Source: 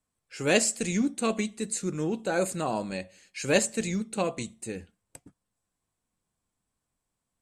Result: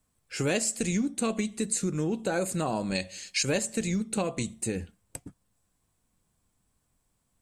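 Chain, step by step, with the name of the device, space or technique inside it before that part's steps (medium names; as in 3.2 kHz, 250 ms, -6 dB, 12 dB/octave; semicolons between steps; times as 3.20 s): 2.95–3.43 s: peaking EQ 5 kHz +12 dB 2 oct; ASMR close-microphone chain (bass shelf 190 Hz +6.5 dB; compression 4:1, threshold -32 dBFS, peak gain reduction 13.5 dB; treble shelf 8.9 kHz +5 dB); trim +5.5 dB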